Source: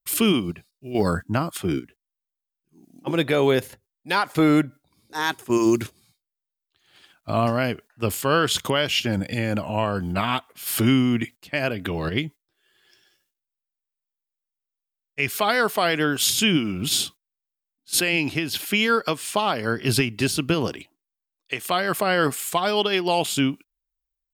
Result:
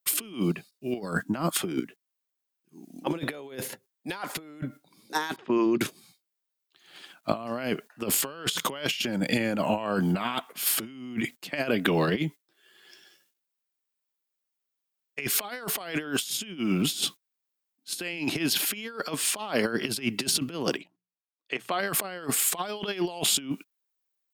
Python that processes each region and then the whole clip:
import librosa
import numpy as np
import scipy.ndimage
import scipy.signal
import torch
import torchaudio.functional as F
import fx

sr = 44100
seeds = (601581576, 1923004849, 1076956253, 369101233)

y = fx.chain(x, sr, fx.lowpass(hz=3700.0, slope=24),
    fx.level_steps(step_db=14), at=(5.36, 5.81))
y = fx.chain(y, sr, fx.level_steps(step_db=16),
    fx.lowpass(hz=2600.0, slope=6),
    fx.hum_notches(base_hz=60, count=3), at=(20.77, 21.8))
y = scipy.signal.sosfilt(scipy.signal.butter(4, 160.0, 'highpass', fs=sr, output='sos'), y)
y = fx.over_compress(y, sr, threshold_db=-28.0, ratio=-0.5)